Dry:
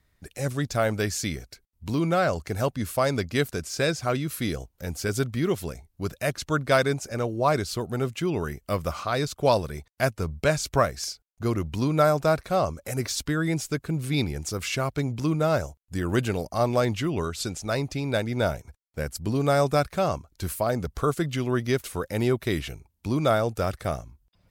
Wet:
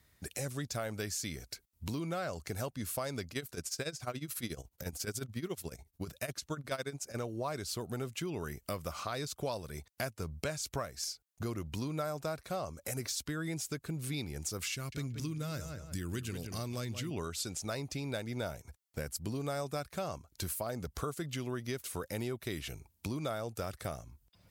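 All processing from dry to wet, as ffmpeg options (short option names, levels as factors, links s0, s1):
-filter_complex "[0:a]asettb=1/sr,asplit=3[s0][s1][s2];[s0]atrim=end=3.314[s3];[s1]atrim=start=3.31:end=7.18,asetpts=PTS-STARTPTS,afade=t=in:d=0.004:c=qsin,afade=t=out:st=3.866:d=0.004:c=qsin,deesser=0.35,tremolo=f=14:d=0.85[s4];[s2]atrim=start=7.176[s5];[s3][s4]acrossfade=d=0.004:c1=hsin:c2=qsin[s6];[s6][s5]acrossfade=d=0.004:c1=qsin:c2=hsin,asettb=1/sr,asplit=3[s7][s8][s9];[s7]atrim=end=14.744[s10];[s8]atrim=start=14.74:end=17.11,asetpts=PTS-STARTPTS,afade=t=in:d=0.004:c=qsin,afade=t=out:st=2.366:d=0.004:c=qsin,equalizer=f=740:w=0.81:g=-14.5,asplit=2[s11][s12];[s12]adelay=181,lowpass=f=3200:p=1,volume=0.316,asplit=2[s13][s14];[s14]adelay=181,lowpass=f=3200:p=1,volume=0.23,asplit=2[s15][s16];[s16]adelay=181,lowpass=f=3200:p=1,volume=0.23[s17];[s11][s13][s15][s17]amix=inputs=4:normalize=0,atrim=end_sample=104517[s18];[s9]atrim=start=17.106[s19];[s10][s18]acrossfade=d=0.004:c1=hsin:c2=qsin[s20];[s20][s19]acrossfade=d=0.004:c1=qsin:c2=hsin,highpass=54,highshelf=f=4100:g=7.5,acompressor=threshold=0.0141:ratio=4"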